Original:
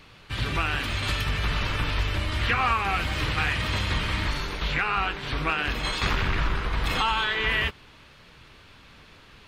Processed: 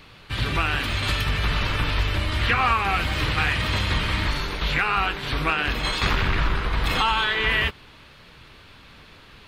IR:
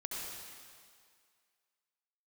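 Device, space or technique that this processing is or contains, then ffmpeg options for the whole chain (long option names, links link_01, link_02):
exciter from parts: -filter_complex "[0:a]asettb=1/sr,asplit=3[link_01][link_02][link_03];[link_01]atrim=end=4.674[link_04];[link_02]atrim=start=4.67:end=5.5,asetpts=PTS-STARTPTS,afade=type=in:duration=0.004:curve=qsin,afade=type=out:start_time=0.826:duration=0.004:curve=qsin,highshelf=frequency=9800:gain=10[link_05];[link_03]atrim=start=5.496[link_06];[link_04][link_05]acrossfade=duration=0.004:curve1=hsin:curve2=qsin[link_07];[link_07][link_06]acrossfade=duration=0.004:curve1=qsin:curve2=hsin,asplit=2[link_08][link_09];[link_09]highpass=frequency=3200:width=0.5412,highpass=frequency=3200:width=1.3066,asoftclip=type=tanh:threshold=-33.5dB,highpass=frequency=4200:width=0.5412,highpass=frequency=4200:width=1.3066,volume=-11.5dB[link_10];[link_08][link_10]amix=inputs=2:normalize=0,volume=3dB"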